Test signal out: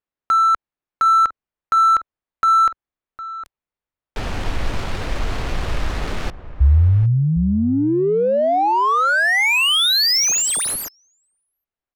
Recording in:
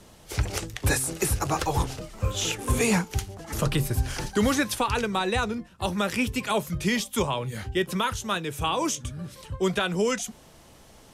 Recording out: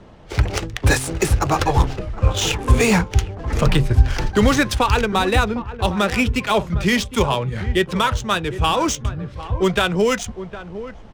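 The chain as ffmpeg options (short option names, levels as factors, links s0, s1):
-filter_complex "[0:a]asplit=2[s0][s1];[s1]adelay=758,volume=0.224,highshelf=f=4000:g=-17.1[s2];[s0][s2]amix=inputs=2:normalize=0,asubboost=boost=2.5:cutoff=93,adynamicsmooth=sensitivity=6.5:basefreq=2200,volume=2.51"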